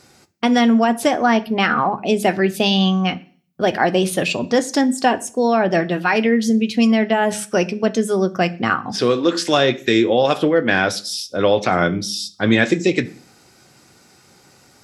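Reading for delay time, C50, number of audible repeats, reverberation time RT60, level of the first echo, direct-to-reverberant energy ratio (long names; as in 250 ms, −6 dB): no echo audible, 20.0 dB, no echo audible, 0.40 s, no echo audible, 8.5 dB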